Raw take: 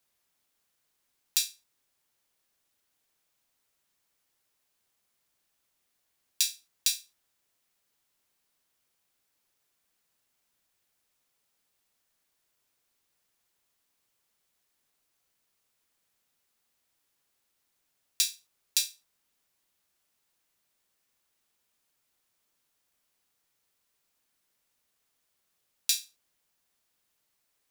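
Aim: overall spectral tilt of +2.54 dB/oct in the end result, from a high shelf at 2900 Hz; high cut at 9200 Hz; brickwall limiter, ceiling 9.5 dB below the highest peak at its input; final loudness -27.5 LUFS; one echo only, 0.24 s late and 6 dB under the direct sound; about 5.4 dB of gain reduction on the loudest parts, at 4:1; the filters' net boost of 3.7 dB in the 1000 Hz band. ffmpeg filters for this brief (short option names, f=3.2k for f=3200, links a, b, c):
-af "lowpass=9.2k,equalizer=f=1k:t=o:g=5.5,highshelf=f=2.9k:g=-5.5,acompressor=threshold=-33dB:ratio=4,alimiter=limit=-22dB:level=0:latency=1,aecho=1:1:240:0.501,volume=18dB"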